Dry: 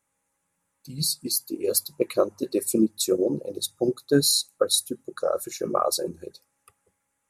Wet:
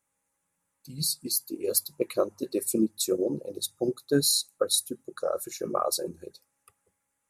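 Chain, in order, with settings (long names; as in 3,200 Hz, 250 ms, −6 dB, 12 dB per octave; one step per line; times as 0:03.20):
high-shelf EQ 9,100 Hz +4 dB
level −4 dB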